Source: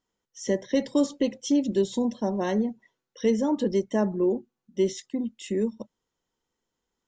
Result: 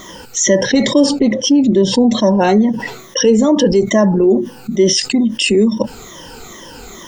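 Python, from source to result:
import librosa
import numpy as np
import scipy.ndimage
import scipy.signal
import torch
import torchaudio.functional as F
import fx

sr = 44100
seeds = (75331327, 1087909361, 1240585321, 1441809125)

y = fx.spec_ripple(x, sr, per_octave=1.2, drift_hz=-2.3, depth_db=15)
y = fx.lowpass(y, sr, hz=fx.line((1.18, 1200.0), (2.09, 2400.0)), slope=6, at=(1.18, 2.09), fade=0.02)
y = fx.env_flatten(y, sr, amount_pct=70)
y = y * librosa.db_to_amplitude(6.0)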